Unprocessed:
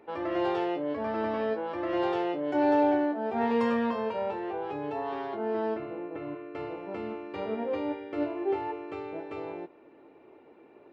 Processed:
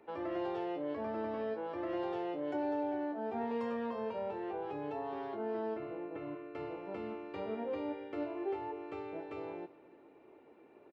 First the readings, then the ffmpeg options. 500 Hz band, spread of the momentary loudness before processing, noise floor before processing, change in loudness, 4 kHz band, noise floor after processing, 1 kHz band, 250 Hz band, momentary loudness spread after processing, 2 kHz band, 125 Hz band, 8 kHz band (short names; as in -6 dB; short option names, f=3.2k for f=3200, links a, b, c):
-7.5 dB, 12 LU, -56 dBFS, -8.5 dB, -10.0 dB, -60 dBFS, -9.0 dB, -8.5 dB, 7 LU, -10.0 dB, -6.5 dB, n/a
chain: -filter_complex "[0:a]acrossover=split=400|800[a][b][c];[a]acompressor=threshold=-35dB:ratio=4[d];[b]acompressor=threshold=-34dB:ratio=4[e];[c]acompressor=threshold=-43dB:ratio=4[f];[d][e][f]amix=inputs=3:normalize=0,aecho=1:1:302:0.0891,volume=-5dB"